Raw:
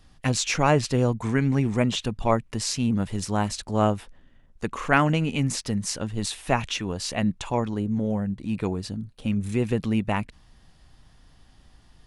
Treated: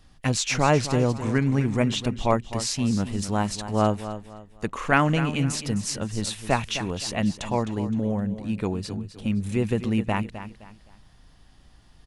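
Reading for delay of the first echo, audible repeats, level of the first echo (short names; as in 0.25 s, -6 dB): 0.259 s, 3, -12.0 dB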